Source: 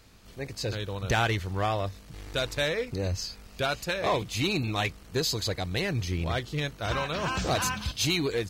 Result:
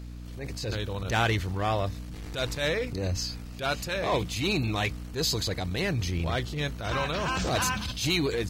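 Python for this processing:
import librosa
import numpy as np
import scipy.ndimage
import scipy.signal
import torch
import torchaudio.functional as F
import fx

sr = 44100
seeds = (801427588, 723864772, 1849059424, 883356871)

y = fx.add_hum(x, sr, base_hz=60, snr_db=11)
y = fx.transient(y, sr, attack_db=-10, sustain_db=2)
y = F.gain(torch.from_numpy(y), 1.5).numpy()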